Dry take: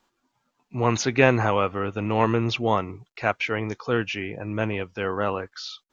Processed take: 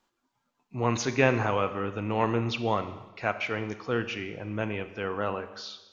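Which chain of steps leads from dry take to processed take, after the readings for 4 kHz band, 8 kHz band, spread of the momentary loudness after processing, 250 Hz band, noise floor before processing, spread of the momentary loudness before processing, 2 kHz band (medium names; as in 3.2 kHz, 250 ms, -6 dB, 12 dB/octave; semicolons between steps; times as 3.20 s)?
-4.5 dB, no reading, 11 LU, -4.5 dB, -77 dBFS, 12 LU, -4.5 dB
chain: Schroeder reverb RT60 1.1 s, combs from 30 ms, DRR 10.5 dB; trim -5 dB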